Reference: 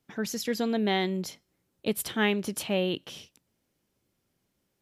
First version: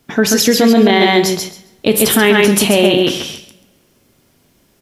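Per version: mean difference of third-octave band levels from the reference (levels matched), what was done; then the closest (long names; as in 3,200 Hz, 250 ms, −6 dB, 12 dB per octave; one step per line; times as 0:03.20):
7.0 dB: repeating echo 135 ms, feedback 17%, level −3.5 dB
coupled-rooms reverb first 0.41 s, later 1.8 s, from −26 dB, DRR 8.5 dB
boost into a limiter +20.5 dB
level −1 dB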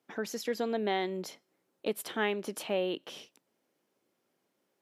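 3.0 dB: high-pass filter 350 Hz 12 dB per octave
in parallel at +3 dB: downward compressor, threshold −38 dBFS, peak gain reduction 16 dB
on the sum: high-shelf EQ 2,000 Hz −9 dB
level −3 dB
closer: second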